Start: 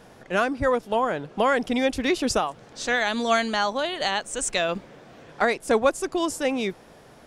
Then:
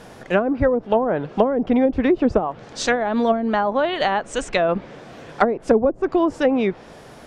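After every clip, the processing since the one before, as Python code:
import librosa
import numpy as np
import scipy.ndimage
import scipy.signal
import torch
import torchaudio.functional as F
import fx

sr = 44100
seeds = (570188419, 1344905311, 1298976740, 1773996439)

y = fx.env_lowpass_down(x, sr, base_hz=420.0, full_db=-17.5)
y = y * 10.0 ** (7.5 / 20.0)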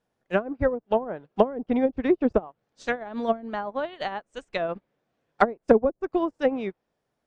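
y = fx.upward_expand(x, sr, threshold_db=-36.0, expansion=2.5)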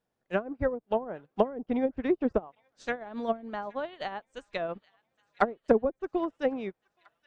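y = fx.echo_wet_highpass(x, sr, ms=821, feedback_pct=59, hz=1700.0, wet_db=-23)
y = y * 10.0 ** (-5.0 / 20.0)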